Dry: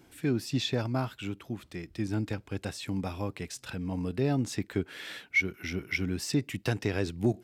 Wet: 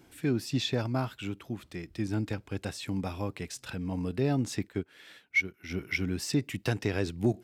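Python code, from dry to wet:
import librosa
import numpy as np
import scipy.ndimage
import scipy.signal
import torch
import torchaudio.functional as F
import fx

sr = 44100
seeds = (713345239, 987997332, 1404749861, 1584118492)

y = fx.upward_expand(x, sr, threshold_db=-47.0, expansion=1.5, at=(4.68, 5.69), fade=0.02)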